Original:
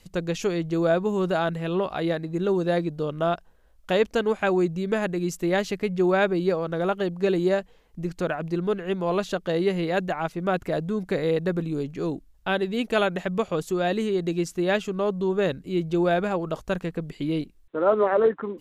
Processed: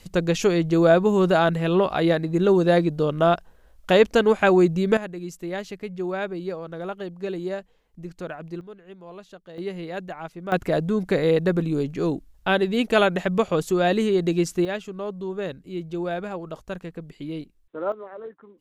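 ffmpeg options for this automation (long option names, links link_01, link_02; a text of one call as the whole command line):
ffmpeg -i in.wav -af "asetnsamples=nb_out_samples=441:pad=0,asendcmd='4.97 volume volume -7dB;8.61 volume volume -17dB;9.58 volume volume -7.5dB;10.52 volume volume 4dB;14.65 volume volume -6dB;17.92 volume volume -18dB',volume=5.5dB" out.wav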